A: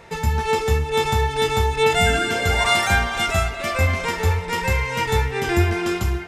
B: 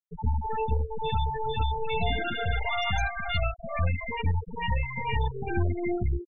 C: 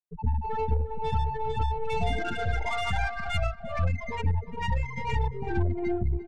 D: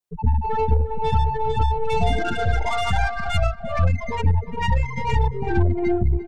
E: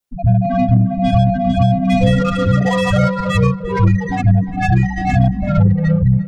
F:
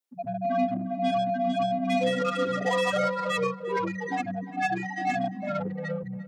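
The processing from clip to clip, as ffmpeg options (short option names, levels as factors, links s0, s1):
-filter_complex "[0:a]aeval=exprs='(tanh(11.2*val(0)+0.65)-tanh(0.65))/11.2':c=same,acrossover=split=420|1600[s0][s1][s2];[s1]adelay=60[s3];[s2]adelay=110[s4];[s0][s3][s4]amix=inputs=3:normalize=0,afftfilt=real='re*gte(hypot(re,im),0.112)':imag='im*gte(hypot(re,im),0.112)':win_size=1024:overlap=0.75"
-filter_complex "[0:a]adynamicsmooth=sensitivity=3:basefreq=1400,asplit=2[s0][s1];[s1]adelay=350,lowpass=f=3200:p=1,volume=0.168,asplit=2[s2][s3];[s3]adelay=350,lowpass=f=3200:p=1,volume=0.27,asplit=2[s4][s5];[s5]adelay=350,lowpass=f=3200:p=1,volume=0.27[s6];[s0][s2][s4][s6]amix=inputs=4:normalize=0"
-af "adynamicequalizer=threshold=0.00355:dfrequency=2200:dqfactor=1.9:tfrequency=2200:tqfactor=1.9:attack=5:release=100:ratio=0.375:range=2.5:mode=cutabove:tftype=bell,volume=2.37"
-af "afreqshift=-190,volume=2"
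-af "highpass=f=250:w=0.5412,highpass=f=250:w=1.3066,volume=0.447"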